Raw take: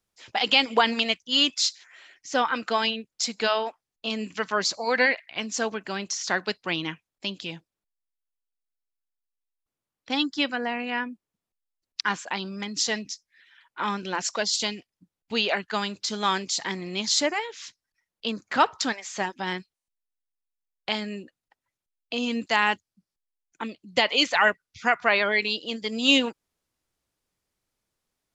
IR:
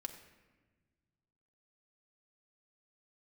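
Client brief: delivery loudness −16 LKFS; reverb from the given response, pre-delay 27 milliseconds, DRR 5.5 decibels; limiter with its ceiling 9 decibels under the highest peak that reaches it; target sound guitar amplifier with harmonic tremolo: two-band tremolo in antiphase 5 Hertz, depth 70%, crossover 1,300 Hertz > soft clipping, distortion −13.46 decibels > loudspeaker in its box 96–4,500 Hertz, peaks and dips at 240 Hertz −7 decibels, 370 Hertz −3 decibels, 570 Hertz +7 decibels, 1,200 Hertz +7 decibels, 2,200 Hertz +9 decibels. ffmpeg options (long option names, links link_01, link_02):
-filter_complex "[0:a]alimiter=limit=-14dB:level=0:latency=1,asplit=2[link_01][link_02];[1:a]atrim=start_sample=2205,adelay=27[link_03];[link_02][link_03]afir=irnorm=-1:irlink=0,volume=-3dB[link_04];[link_01][link_04]amix=inputs=2:normalize=0,acrossover=split=1300[link_05][link_06];[link_05]aeval=exprs='val(0)*(1-0.7/2+0.7/2*cos(2*PI*5*n/s))':channel_layout=same[link_07];[link_06]aeval=exprs='val(0)*(1-0.7/2-0.7/2*cos(2*PI*5*n/s))':channel_layout=same[link_08];[link_07][link_08]amix=inputs=2:normalize=0,asoftclip=threshold=-23.5dB,highpass=96,equalizer=frequency=240:width_type=q:width=4:gain=-7,equalizer=frequency=370:width_type=q:width=4:gain=-3,equalizer=frequency=570:width_type=q:width=4:gain=7,equalizer=frequency=1200:width_type=q:width=4:gain=7,equalizer=frequency=2200:width_type=q:width=4:gain=9,lowpass=frequency=4500:width=0.5412,lowpass=frequency=4500:width=1.3066,volume=14.5dB"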